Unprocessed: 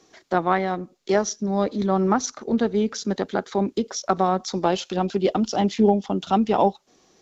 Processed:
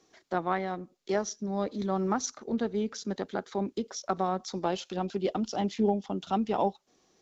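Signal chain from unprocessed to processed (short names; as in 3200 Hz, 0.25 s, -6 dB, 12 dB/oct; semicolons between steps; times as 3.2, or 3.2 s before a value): 1.74–2.37 high shelf 4700 Hz +5.5 dB; gain -8.5 dB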